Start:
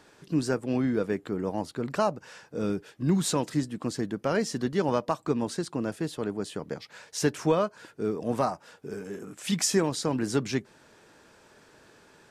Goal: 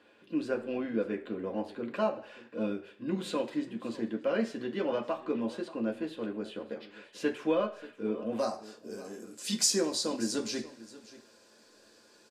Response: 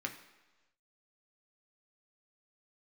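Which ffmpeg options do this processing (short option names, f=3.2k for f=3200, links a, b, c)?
-filter_complex "[0:a]asetnsamples=n=441:p=0,asendcmd='8.39 highshelf g 6',highshelf=f=3.9k:t=q:w=1.5:g=-9,aecho=1:1:584:0.126[a];[1:a]atrim=start_sample=2205,asetrate=83790,aresample=44100[b];[a][b]afir=irnorm=-1:irlink=0"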